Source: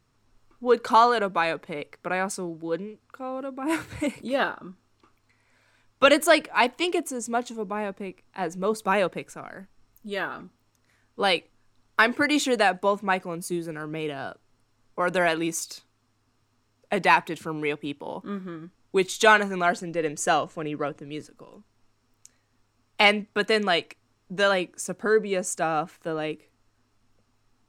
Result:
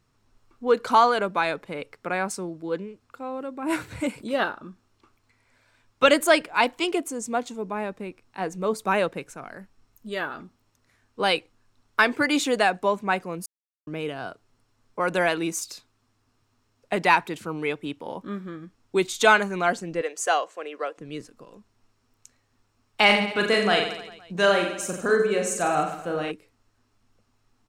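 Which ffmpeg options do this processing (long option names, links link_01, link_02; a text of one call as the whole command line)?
ffmpeg -i in.wav -filter_complex "[0:a]asettb=1/sr,asplit=3[link_01][link_02][link_03];[link_01]atrim=end=20.014[link_04];[link_02]atrim=start=20.01:end=20.98,asetpts=PTS-STARTPTS,afade=type=in:duration=0.004:curve=qsin,afade=type=out:start_time=0.966:duration=0.004:curve=qsin,highpass=frequency=420:width=0.5412,highpass=frequency=420:width=1.3066[link_05];[link_03]atrim=start=20.976[link_06];[link_04][link_05]acrossfade=duration=0.004:curve1=hsin:curve2=qsin[link_07];[link_07][link_06]acrossfade=duration=0.004:curve1=qsin:curve2=hsin,asplit=3[link_08][link_09][link_10];[link_08]afade=type=out:start_time=23.08:duration=0.02[link_11];[link_09]aecho=1:1:40|88|145.6|214.7|297.7|397.2|516.6:0.631|0.398|0.251|0.158|0.1|0.0631|0.0398,afade=type=in:start_time=23.08:duration=0.02,afade=type=out:start_time=26.3:duration=0.02[link_12];[link_10]afade=type=in:start_time=26.3:duration=0.02[link_13];[link_11][link_12][link_13]amix=inputs=3:normalize=0,asplit=3[link_14][link_15][link_16];[link_14]atrim=end=13.46,asetpts=PTS-STARTPTS,afade=type=out:start_time=13.456:duration=0.004:curve=hsin[link_17];[link_15]atrim=start=13.46:end=13.87,asetpts=PTS-STARTPTS,volume=0[link_18];[link_16]atrim=start=13.87,asetpts=PTS-STARTPTS,afade=type=in:duration=0.004:curve=hsin[link_19];[link_17][link_18][link_19]concat=n=3:v=0:a=1" out.wav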